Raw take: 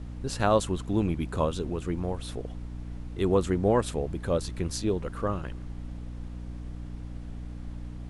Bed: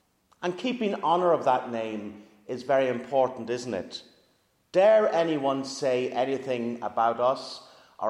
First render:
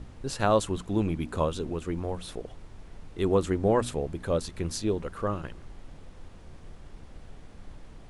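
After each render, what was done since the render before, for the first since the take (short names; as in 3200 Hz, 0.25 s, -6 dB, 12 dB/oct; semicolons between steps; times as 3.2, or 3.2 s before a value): notches 60/120/180/240/300 Hz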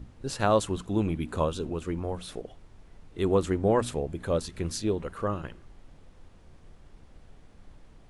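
noise print and reduce 6 dB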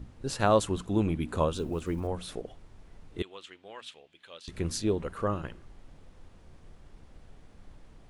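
1.56–2.08 block floating point 7-bit; 3.22–4.48 band-pass 3100 Hz, Q 2.6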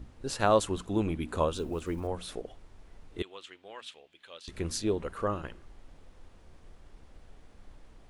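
bell 140 Hz -5.5 dB 1.4 oct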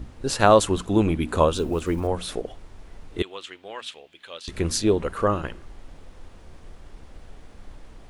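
gain +9 dB; limiter -3 dBFS, peak gain reduction 1.5 dB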